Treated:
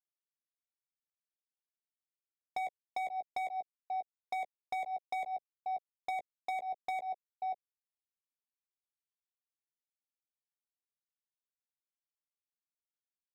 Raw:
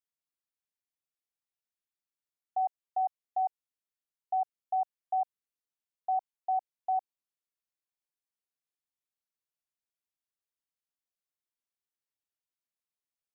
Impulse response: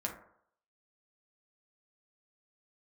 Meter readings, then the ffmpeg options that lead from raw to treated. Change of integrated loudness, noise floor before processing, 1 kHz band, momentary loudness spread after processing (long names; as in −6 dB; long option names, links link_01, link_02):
−5.5 dB, below −85 dBFS, −5.0 dB, 3 LU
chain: -filter_complex "[0:a]aeval=exprs='sgn(val(0))*max(abs(val(0))-0.00282,0)':channel_layout=same,adynamicsmooth=sensitivity=4:basefreq=520,lowshelf=frequency=700:width_type=q:width=1.5:gain=9,aecho=1:1:536:0.126,aresample=11025,aresample=44100,acompressor=threshold=-32dB:ratio=12,asoftclip=type=hard:threshold=-38dB,asplit=2[link_01][link_02];[link_02]adelay=15,volume=-9.5dB[link_03];[link_01][link_03]amix=inputs=2:normalize=0,alimiter=level_in=18dB:limit=-24dB:level=0:latency=1:release=117,volume=-18dB,volume=10.5dB"